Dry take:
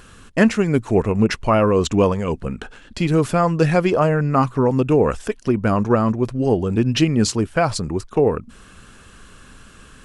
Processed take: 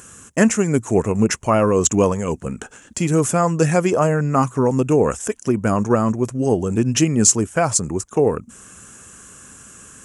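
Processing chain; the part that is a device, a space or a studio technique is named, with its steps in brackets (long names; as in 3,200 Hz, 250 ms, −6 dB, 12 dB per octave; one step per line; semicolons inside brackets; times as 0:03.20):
budget condenser microphone (high-pass filter 82 Hz; high shelf with overshoot 5,400 Hz +8.5 dB, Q 3)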